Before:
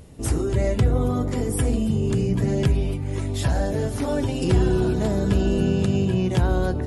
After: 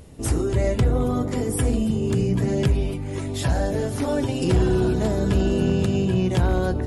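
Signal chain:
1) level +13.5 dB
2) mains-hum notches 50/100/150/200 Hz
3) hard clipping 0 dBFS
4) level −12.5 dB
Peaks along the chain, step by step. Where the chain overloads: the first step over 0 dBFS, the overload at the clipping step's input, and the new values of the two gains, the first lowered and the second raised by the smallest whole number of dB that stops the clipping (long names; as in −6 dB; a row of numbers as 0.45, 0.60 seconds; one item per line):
+5.0, +4.5, 0.0, −12.5 dBFS
step 1, 4.5 dB
step 1 +8.5 dB, step 4 −7.5 dB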